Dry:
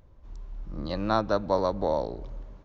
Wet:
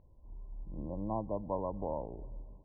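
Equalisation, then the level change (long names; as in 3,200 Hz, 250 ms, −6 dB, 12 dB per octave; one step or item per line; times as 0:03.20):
dynamic equaliser 490 Hz, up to −4 dB, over −33 dBFS, Q 0.8
linear-phase brick-wall low-pass 1,100 Hz
high-frequency loss of the air 470 metres
−6.0 dB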